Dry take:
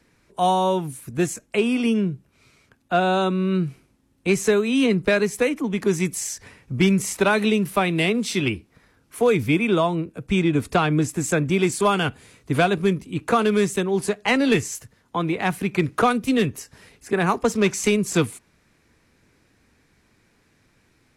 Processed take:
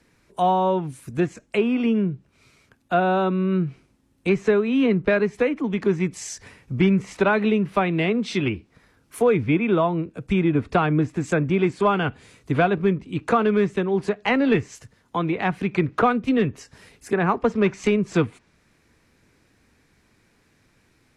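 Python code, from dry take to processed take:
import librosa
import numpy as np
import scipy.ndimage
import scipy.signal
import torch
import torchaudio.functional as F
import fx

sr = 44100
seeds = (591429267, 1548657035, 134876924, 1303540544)

y = fx.env_lowpass_down(x, sr, base_hz=2200.0, full_db=-18.0)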